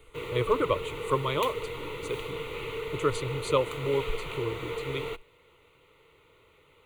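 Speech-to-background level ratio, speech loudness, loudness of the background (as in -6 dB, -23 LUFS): 4.5 dB, -31.5 LUFS, -36.0 LUFS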